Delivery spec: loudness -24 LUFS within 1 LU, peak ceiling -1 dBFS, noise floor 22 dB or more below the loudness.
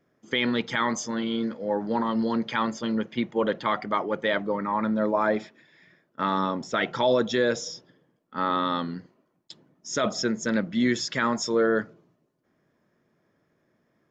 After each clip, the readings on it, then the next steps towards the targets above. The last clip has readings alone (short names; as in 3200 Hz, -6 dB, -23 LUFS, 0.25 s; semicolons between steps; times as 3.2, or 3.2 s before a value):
loudness -26.5 LUFS; peak -10.5 dBFS; loudness target -24.0 LUFS
-> gain +2.5 dB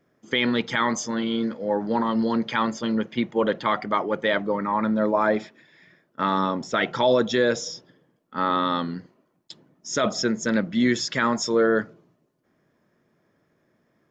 loudness -24.0 LUFS; peak -8.0 dBFS; noise floor -69 dBFS